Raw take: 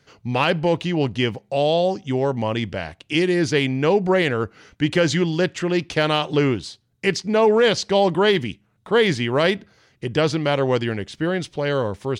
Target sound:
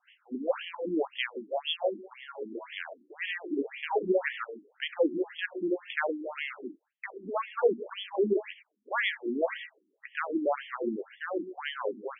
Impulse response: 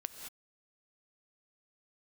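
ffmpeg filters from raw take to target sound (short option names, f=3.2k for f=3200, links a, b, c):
-filter_complex "[0:a]asettb=1/sr,asplit=3[a][b][c];[a]atrim=end=1.394[d];[b]atrim=start=1.39:end=2.78,asetpts=PTS-STARTPTS,afade=t=in:d=0.004:c=qsin,afade=t=out:st=1.386:d=0.004:c=qsin,aemphasis=mode=production:type=riaa[e];[c]atrim=start=2.776[f];[d][e]acrossfade=d=0.004:c1=hsin:c2=qsin[g];[g][f]acrossfade=d=0.004:c1=qsin:c2=hsin[h];[1:a]atrim=start_sample=2205,afade=t=out:st=0.21:d=0.01,atrim=end_sample=9702[i];[h][i]afir=irnorm=-1:irlink=0,afftfilt=real='re*between(b*sr/1024,260*pow(2500/260,0.5+0.5*sin(2*PI*1.9*pts/sr))/1.41,260*pow(2500/260,0.5+0.5*sin(2*PI*1.9*pts/sr))*1.41)':imag='im*between(b*sr/1024,260*pow(2500/260,0.5+0.5*sin(2*PI*1.9*pts/sr))/1.41,260*pow(2500/260,0.5+0.5*sin(2*PI*1.9*pts/sr))*1.41)':win_size=1024:overlap=0.75,volume=-1.5dB"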